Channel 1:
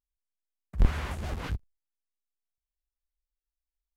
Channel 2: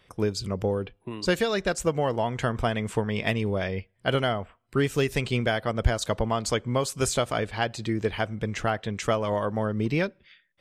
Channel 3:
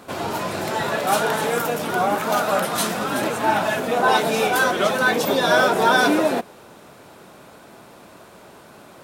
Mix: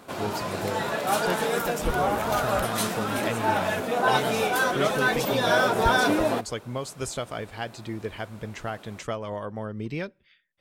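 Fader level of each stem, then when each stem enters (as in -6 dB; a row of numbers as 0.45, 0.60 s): -8.5, -6.5, -5.0 dB; 1.05, 0.00, 0.00 s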